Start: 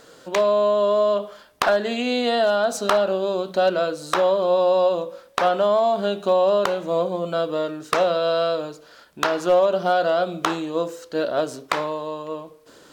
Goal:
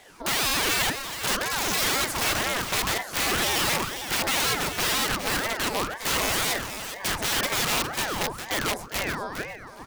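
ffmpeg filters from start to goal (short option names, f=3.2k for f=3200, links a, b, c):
-filter_complex "[0:a]asetrate=57771,aresample=44100,aeval=exprs='(mod(7.5*val(0)+1,2)-1)/7.5':c=same,asplit=2[a][b];[b]aecho=0:1:409|818:0.335|0.0569[c];[a][c]amix=inputs=2:normalize=0,aeval=exprs='val(0)*sin(2*PI*770*n/s+770*0.8/2*sin(2*PI*2*n/s))':c=same"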